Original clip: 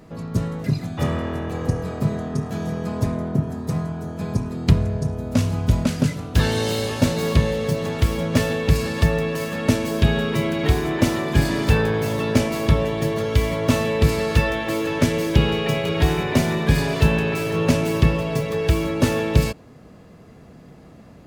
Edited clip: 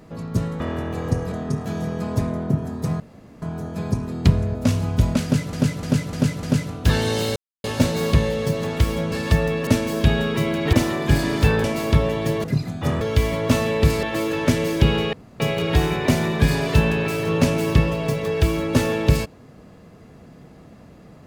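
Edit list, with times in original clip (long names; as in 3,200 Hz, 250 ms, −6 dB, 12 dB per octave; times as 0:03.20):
0:00.60–0:01.17: move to 0:13.20
0:01.89–0:02.17: remove
0:03.85: splice in room tone 0.42 s
0:04.98–0:05.25: remove
0:05.93–0:06.23: repeat, 5 plays
0:06.86: splice in silence 0.28 s
0:08.34–0:08.83: remove
0:09.38–0:09.65: remove
0:10.71–0:10.99: remove
0:11.90–0:12.40: remove
0:14.22–0:14.57: remove
0:15.67: splice in room tone 0.27 s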